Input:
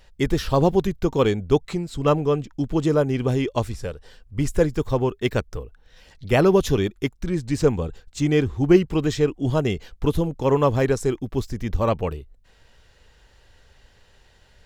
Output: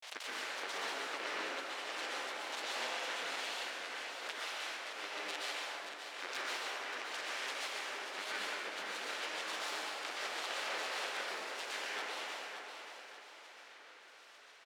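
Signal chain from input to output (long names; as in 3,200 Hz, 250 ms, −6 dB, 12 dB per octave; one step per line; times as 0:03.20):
compressing power law on the bin magnitudes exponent 0.19
high-pass filter 570 Hz 24 dB per octave
noise gate with hold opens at −43 dBFS
low-pass filter 2,200 Hz 12 dB per octave
parametric band 990 Hz −12.5 dB 2.3 octaves
downward compressor 12 to 1, threshold −45 dBFS, peak gain reduction 22.5 dB
granular cloud, pitch spread up and down by 7 semitones
on a send: repeating echo 578 ms, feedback 40%, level −8 dB
on the sum: dense smooth reverb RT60 2.2 s, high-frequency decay 0.5×, pre-delay 110 ms, DRR −7 dB
background raised ahead of every attack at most 61 dB per second
level +3.5 dB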